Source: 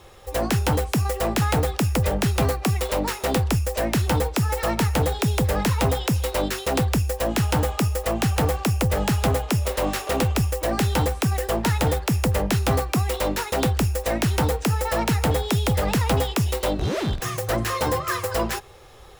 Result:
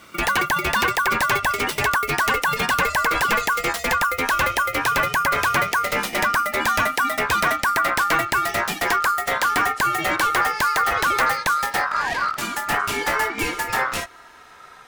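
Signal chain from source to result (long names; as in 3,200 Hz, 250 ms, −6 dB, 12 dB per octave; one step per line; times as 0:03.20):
gliding playback speed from 189% → 69%
ring modulation 1,300 Hz
level +4 dB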